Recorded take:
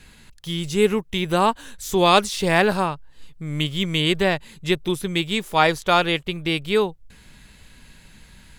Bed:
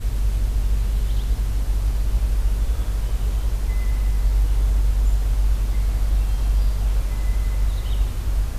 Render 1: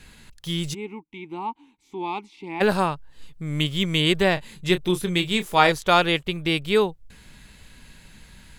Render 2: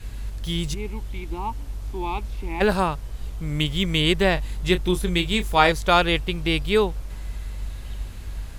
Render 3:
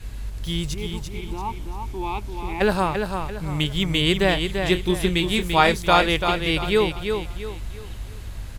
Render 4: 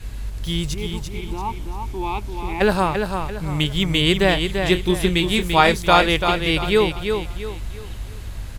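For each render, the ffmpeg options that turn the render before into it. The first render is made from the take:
-filter_complex "[0:a]asplit=3[s0][s1][s2];[s0]afade=t=out:st=0.73:d=0.02[s3];[s1]asplit=3[s4][s5][s6];[s4]bandpass=f=300:t=q:w=8,volume=1[s7];[s5]bandpass=f=870:t=q:w=8,volume=0.501[s8];[s6]bandpass=f=2240:t=q:w=8,volume=0.355[s9];[s7][s8][s9]amix=inputs=3:normalize=0,afade=t=in:st=0.73:d=0.02,afade=t=out:st=2.6:d=0.02[s10];[s2]afade=t=in:st=2.6:d=0.02[s11];[s3][s10][s11]amix=inputs=3:normalize=0,asettb=1/sr,asplit=3[s12][s13][s14];[s12]atrim=end=4.344[s15];[s13]atrim=start=4.34:end=5.72,asetpts=PTS-STARTPTS,afade=t=in:d=0.004:c=qsin,afade=t=out:st=1.376:d=0.004:c=qsin,asplit=2[s16][s17];[s17]adelay=28,volume=0.316[s18];[s16][s18]amix=inputs=2:normalize=0,atrim=end_sample=60858[s19];[s14]atrim=start=5.716[s20];[s15][s19]acrossfade=d=0.004:c1=hsin:c2=qsin[s21];[s21][s20]acrossfade=d=0.004:c1=qsin:c2=hsin"
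-filter_complex "[1:a]volume=0.299[s0];[0:a][s0]amix=inputs=2:normalize=0"
-af "aecho=1:1:340|680|1020|1360:0.501|0.18|0.065|0.0234"
-af "volume=1.33,alimiter=limit=0.891:level=0:latency=1"

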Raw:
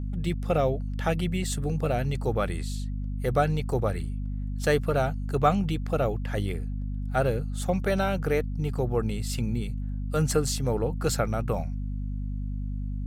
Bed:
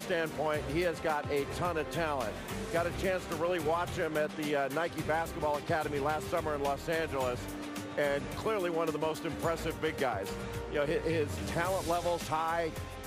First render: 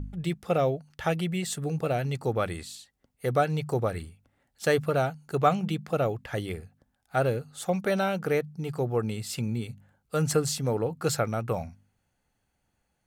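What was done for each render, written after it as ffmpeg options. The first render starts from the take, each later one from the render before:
-af "bandreject=f=50:t=h:w=4,bandreject=f=100:t=h:w=4,bandreject=f=150:t=h:w=4,bandreject=f=200:t=h:w=4,bandreject=f=250:t=h:w=4"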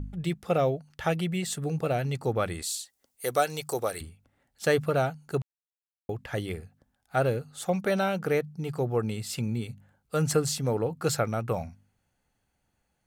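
-filter_complex "[0:a]asettb=1/sr,asplit=3[s0][s1][s2];[s0]atrim=end=2.624[s3];[s1]atrim=start=2.62:end=4.01,asetpts=PTS-STARTPTS,afade=t=in:d=0.004:c=qsin,afade=t=out:st=1.386:d=0.004:c=qsin,bass=f=250:g=-14,treble=f=4000:g=13[s4];[s2]atrim=start=4.006[s5];[s3][s4]acrossfade=d=0.004:c1=hsin:c2=qsin[s6];[s6][s5]acrossfade=d=0.004:c1=qsin:c2=hsin,asplit=3[s7][s8][s9];[s7]atrim=end=5.42,asetpts=PTS-STARTPTS,afade=t=out:st=5.416:d=0.004:c=hsin[s10];[s8]atrim=start=5.42:end=6.09,asetpts=PTS-STARTPTS,volume=0[s11];[s9]atrim=start=6.09,asetpts=PTS-STARTPTS,afade=t=in:d=0.004:c=hsin[s12];[s10][s11][s12]concat=n=3:v=0:a=1"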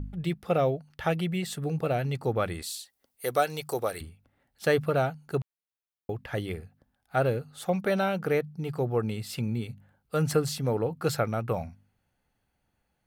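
-af "equalizer=f=7200:t=o:w=0.78:g=-7.5"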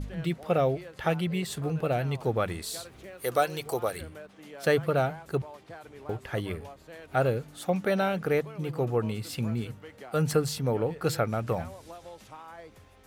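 -filter_complex "[1:a]volume=0.2[s0];[0:a][s0]amix=inputs=2:normalize=0"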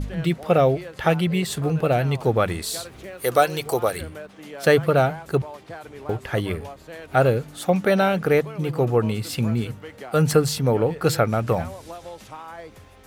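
-af "volume=2.37"

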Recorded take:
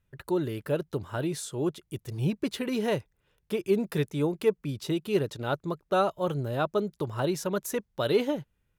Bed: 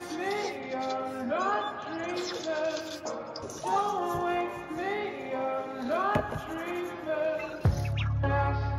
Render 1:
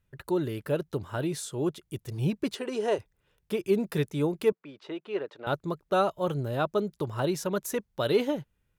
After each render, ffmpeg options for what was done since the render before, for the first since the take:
-filter_complex "[0:a]asplit=3[s0][s1][s2];[s0]afade=t=out:st=2.54:d=0.02[s3];[s1]highpass=360,equalizer=f=390:t=q:w=4:g=6,equalizer=f=700:t=q:w=4:g=3,equalizer=f=2200:t=q:w=4:g=-7,equalizer=f=3800:t=q:w=4:g=-7,equalizer=f=8600:t=q:w=4:g=4,lowpass=f=9000:w=0.5412,lowpass=f=9000:w=1.3066,afade=t=in:st=2.54:d=0.02,afade=t=out:st=2.98:d=0.02[s4];[s2]afade=t=in:st=2.98:d=0.02[s5];[s3][s4][s5]amix=inputs=3:normalize=0,asettb=1/sr,asplit=3[s6][s7][s8];[s6]atrim=end=4.524[s9];[s7]atrim=start=4.52:end=5.47,asetpts=PTS-STARTPTS,afade=t=in:d=0.004:c=qsin,afade=t=out:st=0.946:d=0.004:c=qsin,highpass=490,lowpass=2100[s10];[s8]atrim=start=5.466[s11];[s9][s10]acrossfade=d=0.004:c1=hsin:c2=qsin[s12];[s12][s11]acrossfade=d=0.004:c1=qsin:c2=hsin"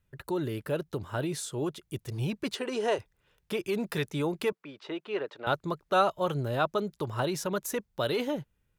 -filter_complex "[0:a]acrossover=split=680|7000[s0][s1][s2];[s0]alimiter=level_in=1.19:limit=0.0631:level=0:latency=1,volume=0.841[s3];[s1]dynaudnorm=f=470:g=9:m=1.5[s4];[s3][s4][s2]amix=inputs=3:normalize=0"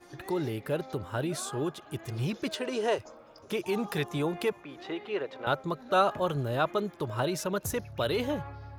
-filter_complex "[1:a]volume=0.188[s0];[0:a][s0]amix=inputs=2:normalize=0"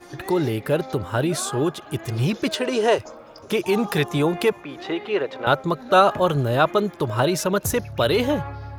-af "volume=2.99,alimiter=limit=0.708:level=0:latency=1"

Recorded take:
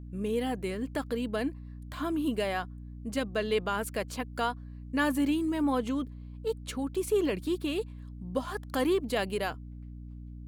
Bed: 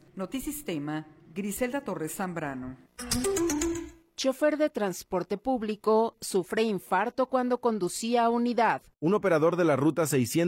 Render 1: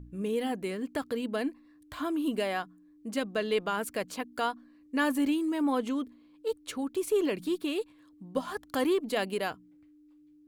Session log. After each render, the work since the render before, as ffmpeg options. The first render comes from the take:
-af "bandreject=f=60:t=h:w=4,bandreject=f=120:t=h:w=4,bandreject=f=180:t=h:w=4,bandreject=f=240:t=h:w=4"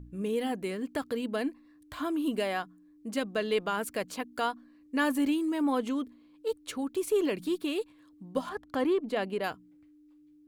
-filter_complex "[0:a]asettb=1/sr,asplit=3[s0][s1][s2];[s0]atrim=end=8.494[s3];[s1]atrim=start=8.49:end=9.44,asetpts=PTS-STARTPTS,afade=t=in:d=0.004:c=qsin,afade=t=out:st=0.946:d=0.004:c=qsin,lowpass=f=2000:p=1[s4];[s2]atrim=start=9.436[s5];[s3][s4]acrossfade=d=0.004:c1=hsin:c2=qsin[s6];[s6][s5]acrossfade=d=0.004:c1=qsin:c2=hsin"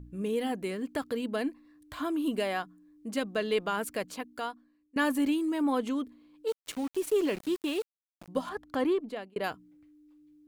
-filter_complex "[0:a]asettb=1/sr,asplit=3[s0][s1][s2];[s0]atrim=end=6.484[s3];[s1]atrim=start=6.48:end=8.28,asetpts=PTS-STARTPTS,afade=t=in:d=0.004:c=qsin,afade=t=out:st=1.796:d=0.004:c=qsin,aeval=exprs='val(0)*gte(abs(val(0)),0.01)':c=same[s4];[s2]atrim=start=8.276[s5];[s3][s4]acrossfade=d=0.004:c1=hsin:c2=qsin[s6];[s6][s5]acrossfade=d=0.004:c1=qsin:c2=hsin,asplit=3[s7][s8][s9];[s7]atrim=end=4.96,asetpts=PTS-STARTPTS,afade=t=out:st=3.92:d=1.04:silence=0.0944061[s10];[s8]atrim=start=4.96:end=9.36,asetpts=PTS-STARTPTS,afade=t=in:d=0.004:c=hsin:silence=0.0944061,afade=t=out:st=3.94:d=0.46[s11];[s9]atrim=start=9.36,asetpts=PTS-STARTPTS,afade=t=in:d=0.004:c=hsin[s12];[s10][s11][s12]concat=n=3:v=0:a=1"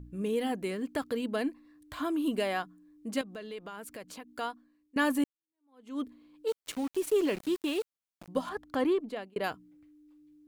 -filter_complex "[0:a]asettb=1/sr,asplit=3[s0][s1][s2];[s0]atrim=end=3.214[s3];[s1]atrim=start=3.21:end=4.32,asetpts=PTS-STARTPTS,afade=t=in:d=0.004:c=qsin,afade=t=out:st=1.106:d=0.004:c=qsin,acompressor=threshold=0.00708:ratio=3:attack=3.2:release=140:knee=1:detection=peak[s4];[s2]atrim=start=4.316[s5];[s3][s4]acrossfade=d=0.004:c1=hsin:c2=qsin[s6];[s6][s5]acrossfade=d=0.004:c1=qsin:c2=hsin,asplit=2[s7][s8];[s7]atrim=end=5.24,asetpts=PTS-STARTPTS,afade=t=out:st=5.236:d=0.004:c=hsin[s9];[s8]atrim=start=5.24,asetpts=PTS-STARTPTS,afade=t=in:d=0.76:c=exp[s10];[s9][s10]concat=n=2:v=0:a=1"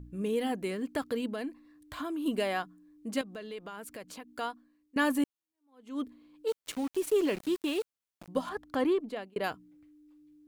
-filter_complex "[0:a]asettb=1/sr,asplit=3[s0][s1][s2];[s0]atrim=end=1.264[s3];[s1]atrim=start=1.26:end=2.26,asetpts=PTS-STARTPTS,afade=t=in:d=0.004:c=qsin,afade=t=out:st=0.996:d=0.004:c=qsin,acompressor=threshold=0.0251:ratio=6:attack=3.2:release=140:knee=1:detection=peak[s4];[s2]atrim=start=2.256[s5];[s3][s4]acrossfade=d=0.004:c1=hsin:c2=qsin[s6];[s6][s5]acrossfade=d=0.004:c1=qsin:c2=hsin"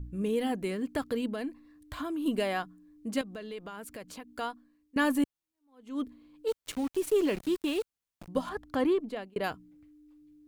-af "lowshelf=f=110:g=10.5"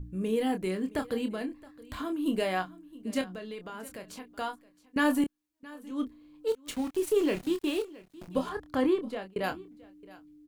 -filter_complex "[0:a]asplit=2[s0][s1];[s1]adelay=27,volume=0.422[s2];[s0][s2]amix=inputs=2:normalize=0,aecho=1:1:669:0.0944"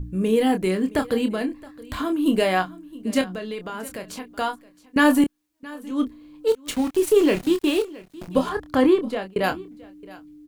-af "volume=2.82"

